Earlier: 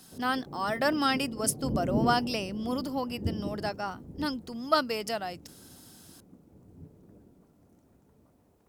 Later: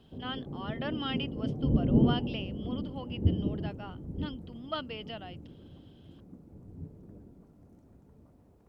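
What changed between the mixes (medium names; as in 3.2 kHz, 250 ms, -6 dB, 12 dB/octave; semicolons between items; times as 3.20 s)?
speech: add four-pole ladder low-pass 3.3 kHz, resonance 80%; master: add tilt EQ -2 dB/octave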